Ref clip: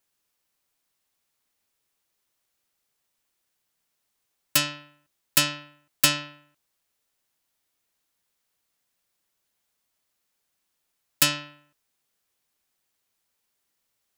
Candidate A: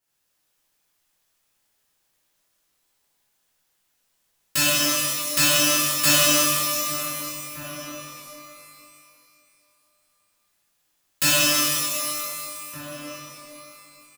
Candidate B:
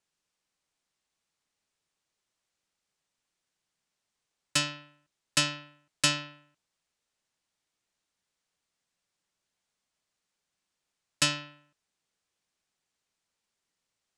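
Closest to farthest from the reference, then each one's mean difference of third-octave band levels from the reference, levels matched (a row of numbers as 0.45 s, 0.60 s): B, A; 2.0 dB, 16.0 dB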